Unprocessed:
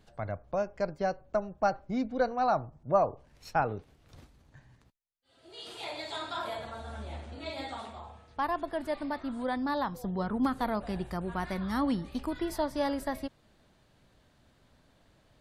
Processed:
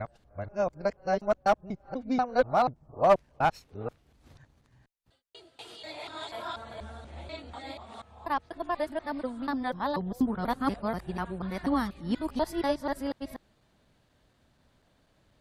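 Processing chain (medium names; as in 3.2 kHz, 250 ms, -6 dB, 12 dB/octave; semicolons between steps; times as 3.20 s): time reversed locally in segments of 243 ms; one-sided clip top -20 dBFS; upward expansion 1.5:1, over -37 dBFS; trim +5.5 dB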